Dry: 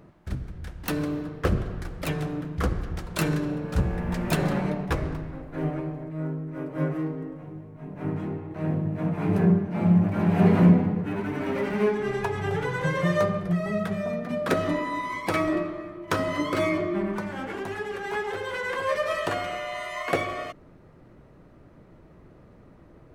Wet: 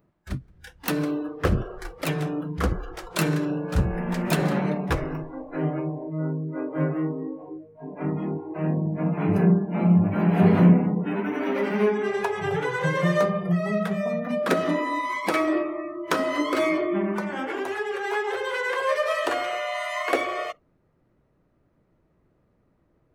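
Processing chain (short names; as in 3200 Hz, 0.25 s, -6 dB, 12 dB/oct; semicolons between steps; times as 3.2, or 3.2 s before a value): in parallel at +1 dB: compressor, threshold -35 dBFS, peak gain reduction 21 dB; on the sum: spectral noise reduction 21 dB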